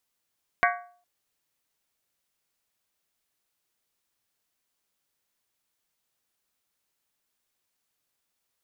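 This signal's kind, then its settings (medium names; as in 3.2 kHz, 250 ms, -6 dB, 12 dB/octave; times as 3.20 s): skin hit length 0.41 s, lowest mode 709 Hz, modes 7, decay 0.48 s, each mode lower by 1 dB, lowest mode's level -20 dB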